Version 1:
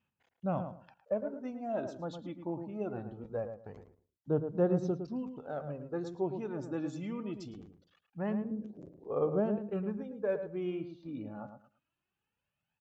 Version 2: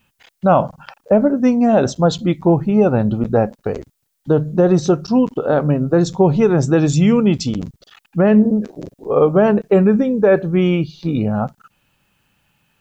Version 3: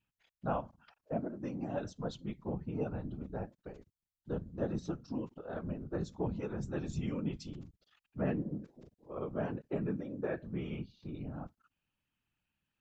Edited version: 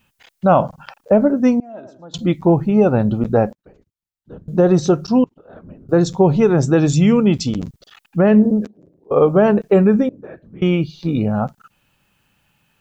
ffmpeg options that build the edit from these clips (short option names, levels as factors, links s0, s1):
-filter_complex "[0:a]asplit=2[s0][s1];[2:a]asplit=3[s2][s3][s4];[1:a]asplit=6[s5][s6][s7][s8][s9][s10];[s5]atrim=end=1.602[s11];[s0]atrim=start=1.598:end=2.142[s12];[s6]atrim=start=2.138:end=3.532[s13];[s2]atrim=start=3.528:end=4.482[s14];[s7]atrim=start=4.478:end=5.242[s15];[s3]atrim=start=5.238:end=5.892[s16];[s8]atrim=start=5.888:end=8.672[s17];[s1]atrim=start=8.668:end=9.112[s18];[s9]atrim=start=9.108:end=10.092[s19];[s4]atrim=start=10.088:end=10.622[s20];[s10]atrim=start=10.618[s21];[s11][s12]acrossfade=d=0.004:c1=hsin:c2=hsin[s22];[s22][s13]acrossfade=d=0.004:c1=hsin:c2=hsin[s23];[s23][s14]acrossfade=d=0.004:c1=hsin:c2=hsin[s24];[s24][s15]acrossfade=d=0.004:c1=hsin:c2=hsin[s25];[s25][s16]acrossfade=d=0.004:c1=hsin:c2=hsin[s26];[s26][s17]acrossfade=d=0.004:c1=hsin:c2=hsin[s27];[s27][s18]acrossfade=d=0.004:c1=hsin:c2=hsin[s28];[s28][s19]acrossfade=d=0.004:c1=hsin:c2=hsin[s29];[s29][s20]acrossfade=d=0.004:c1=hsin:c2=hsin[s30];[s30][s21]acrossfade=d=0.004:c1=hsin:c2=hsin"